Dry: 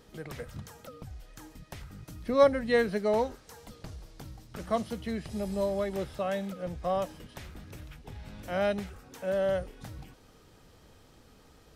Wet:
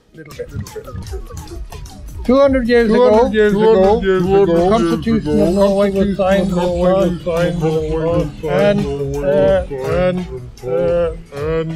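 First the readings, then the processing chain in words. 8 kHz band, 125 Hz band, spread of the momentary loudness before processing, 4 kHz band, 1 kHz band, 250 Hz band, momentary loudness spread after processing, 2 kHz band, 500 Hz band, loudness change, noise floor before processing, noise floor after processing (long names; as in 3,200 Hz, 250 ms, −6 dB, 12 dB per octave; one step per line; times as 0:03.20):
can't be measured, +21.0 dB, 20 LU, +16.0 dB, +16.0 dB, +20.5 dB, 18 LU, +15.0 dB, +17.5 dB, +16.0 dB, −58 dBFS, −35 dBFS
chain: noise reduction from a noise print of the clip's start 12 dB
high-shelf EQ 11,000 Hz −7.5 dB
hum removal 186.2 Hz, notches 2
rotating-speaker cabinet horn 1.2 Hz, later 6.7 Hz, at 0:09.87
delay with pitch and tempo change per echo 317 ms, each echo −2 semitones, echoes 3
boost into a limiter +21.5 dB
level −2 dB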